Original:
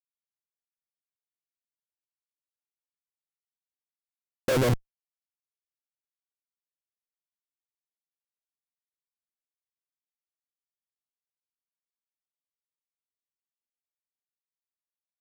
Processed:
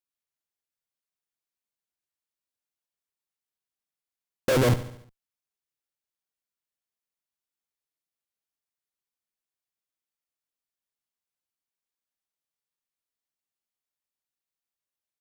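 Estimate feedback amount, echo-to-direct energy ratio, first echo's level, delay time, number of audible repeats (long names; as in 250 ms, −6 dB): 53%, −12.5 dB, −14.0 dB, 71 ms, 4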